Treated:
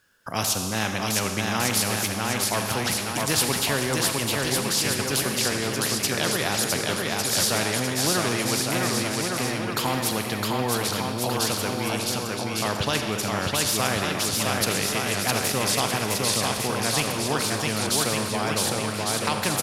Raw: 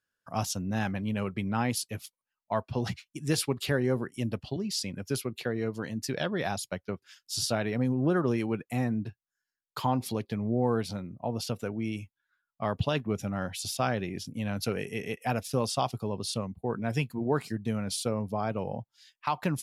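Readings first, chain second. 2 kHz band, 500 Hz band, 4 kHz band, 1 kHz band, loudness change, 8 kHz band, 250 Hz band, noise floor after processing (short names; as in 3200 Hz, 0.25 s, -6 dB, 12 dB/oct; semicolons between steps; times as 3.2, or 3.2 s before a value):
+12.0 dB, +4.5 dB, +13.5 dB, +7.5 dB, +8.0 dB, +15.0 dB, +2.5 dB, -30 dBFS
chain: bouncing-ball echo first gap 0.66 s, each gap 0.75×, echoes 5; Schroeder reverb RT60 1.2 s, combs from 29 ms, DRR 10 dB; spectral compressor 2:1; gain +5 dB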